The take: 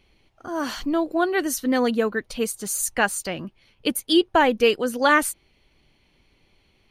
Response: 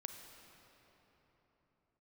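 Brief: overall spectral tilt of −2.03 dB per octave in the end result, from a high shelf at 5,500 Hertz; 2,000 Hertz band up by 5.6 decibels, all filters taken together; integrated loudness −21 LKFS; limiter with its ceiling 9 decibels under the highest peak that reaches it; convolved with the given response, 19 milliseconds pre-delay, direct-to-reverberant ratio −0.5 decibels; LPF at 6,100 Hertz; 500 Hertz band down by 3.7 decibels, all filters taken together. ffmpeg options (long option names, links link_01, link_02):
-filter_complex "[0:a]lowpass=6100,equalizer=frequency=500:width_type=o:gain=-5,equalizer=frequency=2000:width_type=o:gain=6.5,highshelf=frequency=5500:gain=8.5,alimiter=limit=-12dB:level=0:latency=1,asplit=2[link_01][link_02];[1:a]atrim=start_sample=2205,adelay=19[link_03];[link_02][link_03]afir=irnorm=-1:irlink=0,volume=3.5dB[link_04];[link_01][link_04]amix=inputs=2:normalize=0,volume=0.5dB"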